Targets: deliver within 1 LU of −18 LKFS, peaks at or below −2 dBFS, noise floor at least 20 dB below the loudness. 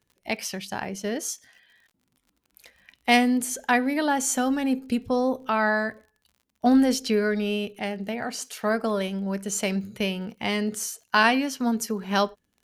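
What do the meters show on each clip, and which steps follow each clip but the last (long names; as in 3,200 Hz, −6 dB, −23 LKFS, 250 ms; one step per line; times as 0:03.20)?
crackle rate 53 per second; integrated loudness −25.5 LKFS; sample peak −6.5 dBFS; target loudness −18.0 LKFS
→ click removal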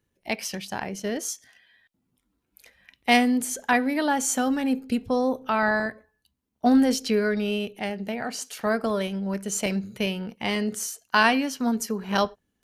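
crackle rate 0.40 per second; integrated loudness −25.5 LKFS; sample peak −6.5 dBFS; target loudness −18.0 LKFS
→ level +7.5 dB
brickwall limiter −2 dBFS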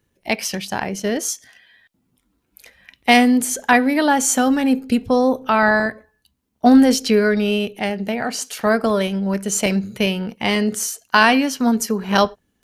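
integrated loudness −18.0 LKFS; sample peak −2.0 dBFS; background noise floor −69 dBFS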